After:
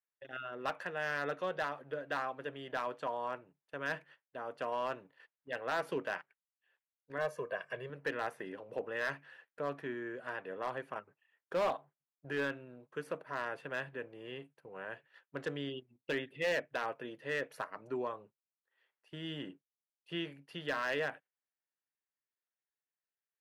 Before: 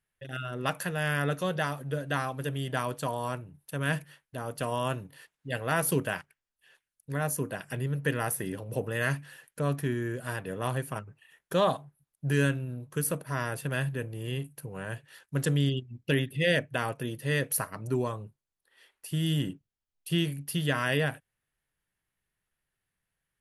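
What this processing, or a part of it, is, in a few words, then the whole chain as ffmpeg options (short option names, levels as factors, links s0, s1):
walkie-talkie: -filter_complex "[0:a]highpass=400,lowpass=2400,asoftclip=type=hard:threshold=0.0631,agate=range=0.316:threshold=0.002:ratio=16:detection=peak,asettb=1/sr,asplit=3[s0][s1][s2];[s0]atrim=end=7.184[s3];[s1]atrim=start=7.18:end=7.9,asetpts=PTS-STARTPTS,afade=t=in:d=0.004:c=qsin,afade=t=out:st=0.716:d=0.004:c=qsin,aecho=1:1:1.8:0.79,atrim=end_sample=31752[s4];[s2]atrim=start=7.896[s5];[s3][s4]acrossfade=d=0.004:c1=hsin:c2=qsin[s6];[s6][s5]acrossfade=d=0.004:c1=qsin:c2=hsin,volume=0.668"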